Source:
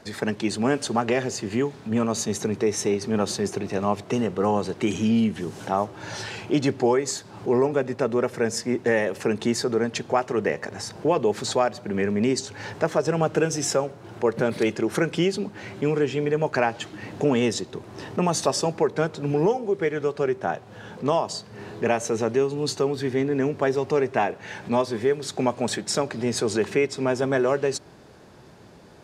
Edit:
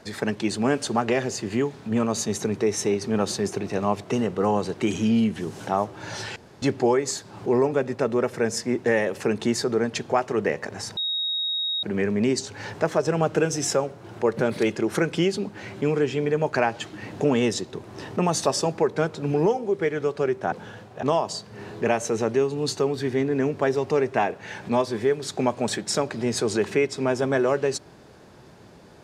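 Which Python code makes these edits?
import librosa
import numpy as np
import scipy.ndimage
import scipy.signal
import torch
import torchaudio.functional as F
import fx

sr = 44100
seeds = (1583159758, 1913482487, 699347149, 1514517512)

y = fx.edit(x, sr, fx.room_tone_fill(start_s=6.36, length_s=0.26),
    fx.bleep(start_s=10.97, length_s=0.86, hz=3770.0, db=-23.5),
    fx.reverse_span(start_s=20.52, length_s=0.51), tone=tone)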